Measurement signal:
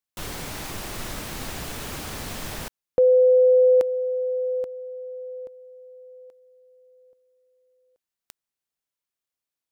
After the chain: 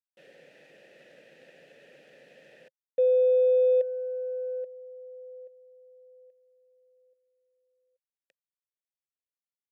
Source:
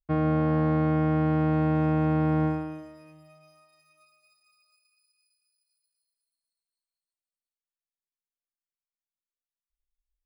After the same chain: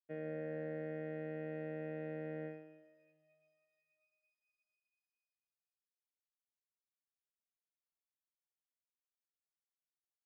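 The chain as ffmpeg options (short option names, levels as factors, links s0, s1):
-filter_complex "[0:a]aeval=exprs='0.251*(cos(1*acos(clip(val(0)/0.251,-1,1)))-cos(1*PI/2))+0.0126*(cos(7*acos(clip(val(0)/0.251,-1,1)))-cos(7*PI/2))':c=same,asplit=3[s0][s1][s2];[s0]bandpass=f=530:t=q:w=8,volume=1[s3];[s1]bandpass=f=1840:t=q:w=8,volume=0.501[s4];[s2]bandpass=f=2480:t=q:w=8,volume=0.355[s5];[s3][s4][s5]amix=inputs=3:normalize=0,lowshelf=f=110:t=q:w=3:g=-10.5,volume=0.596"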